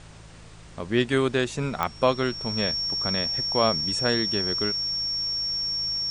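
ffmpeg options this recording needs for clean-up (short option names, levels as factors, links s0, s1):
-af "adeclick=t=4,bandreject=f=54:t=h:w=4,bandreject=f=108:t=h:w=4,bandreject=f=162:t=h:w=4,bandreject=f=5500:w=30,afftdn=nr=25:nf=-45"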